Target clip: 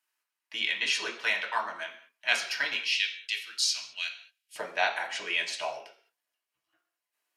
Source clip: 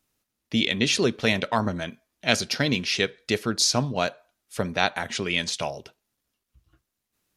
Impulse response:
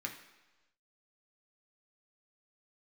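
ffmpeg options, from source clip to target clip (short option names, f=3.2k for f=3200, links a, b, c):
-filter_complex "[0:a]asetnsamples=n=441:p=0,asendcmd='2.76 highpass f 2900;4.56 highpass f 720',highpass=f=980:t=q:w=1.8[a];[1:a]atrim=start_sample=2205,afade=t=out:st=0.32:d=0.01,atrim=end_sample=14553,asetrate=52920,aresample=44100[b];[a][b]afir=irnorm=-1:irlink=0,volume=-3dB"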